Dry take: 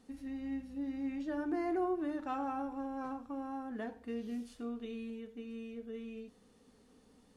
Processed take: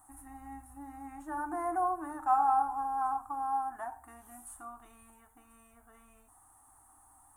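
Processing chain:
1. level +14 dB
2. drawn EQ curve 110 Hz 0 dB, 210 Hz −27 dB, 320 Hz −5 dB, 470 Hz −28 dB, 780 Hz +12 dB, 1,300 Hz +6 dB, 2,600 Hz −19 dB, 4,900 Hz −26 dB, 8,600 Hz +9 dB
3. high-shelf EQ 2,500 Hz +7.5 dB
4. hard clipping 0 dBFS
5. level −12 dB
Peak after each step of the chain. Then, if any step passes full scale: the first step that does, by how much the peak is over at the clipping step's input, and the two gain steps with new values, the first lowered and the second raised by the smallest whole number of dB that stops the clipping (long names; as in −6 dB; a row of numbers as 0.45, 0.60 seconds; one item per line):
−11.0, −5.0, −4.0, −4.0, −16.0 dBFS
no step passes full scale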